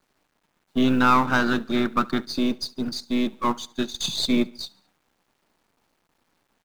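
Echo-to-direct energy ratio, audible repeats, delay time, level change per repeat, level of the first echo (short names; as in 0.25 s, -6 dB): -22.5 dB, 2, 71 ms, -6.0 dB, -23.5 dB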